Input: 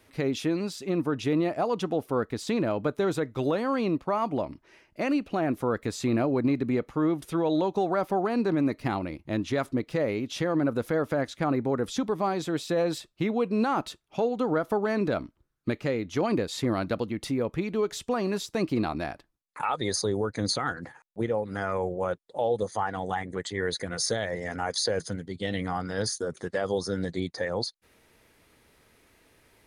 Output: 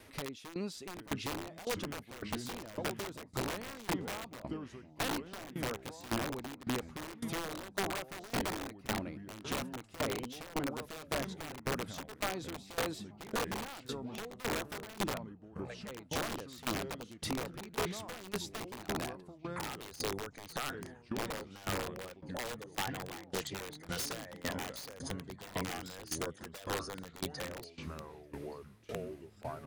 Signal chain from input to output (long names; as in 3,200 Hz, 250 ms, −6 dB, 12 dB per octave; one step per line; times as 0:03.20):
downward compressor 3 to 1, threshold −39 dBFS, peak gain reduction 13 dB
0:15.13–0:15.88: Chebyshev high-pass with heavy ripple 450 Hz, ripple 6 dB
repeating echo 890 ms, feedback 32%, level −23.5 dB
delay with pitch and tempo change per echo 739 ms, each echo −4 semitones, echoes 3, each echo −6 dB
wrap-around overflow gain 30.5 dB
tremolo with a ramp in dB decaying 1.8 Hz, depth 19 dB
level +5 dB